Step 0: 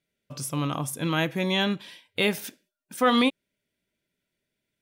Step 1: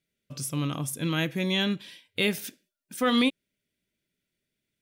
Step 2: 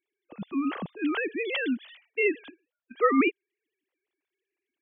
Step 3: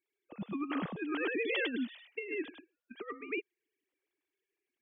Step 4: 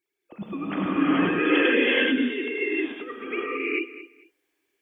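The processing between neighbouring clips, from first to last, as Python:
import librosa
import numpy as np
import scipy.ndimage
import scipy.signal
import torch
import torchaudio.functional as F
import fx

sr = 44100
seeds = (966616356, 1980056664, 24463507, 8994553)

y1 = fx.peak_eq(x, sr, hz=870.0, db=-8.5, octaves=1.4)
y2 = fx.sine_speech(y1, sr)
y3 = y2 + 10.0 ** (-4.0 / 20.0) * np.pad(y2, (int(102 * sr / 1000.0), 0))[:len(y2)]
y3 = fx.over_compress(y3, sr, threshold_db=-28.0, ratio=-0.5)
y3 = y3 * 10.0 ** (-7.0 / 20.0)
y4 = fx.echo_feedback(y3, sr, ms=224, feedback_pct=22, wet_db=-15.0)
y4 = fx.rev_gated(y4, sr, seeds[0], gate_ms=470, shape='rising', drr_db=-8.0)
y4 = y4 * 10.0 ** (4.5 / 20.0)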